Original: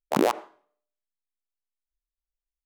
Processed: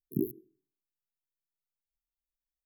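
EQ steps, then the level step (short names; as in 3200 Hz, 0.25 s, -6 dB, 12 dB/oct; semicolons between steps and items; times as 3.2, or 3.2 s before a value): brick-wall FIR band-stop 420–11000 Hz; bell 130 Hz +12 dB 0.53 oct; high shelf 9600 Hz +8 dB; -7.0 dB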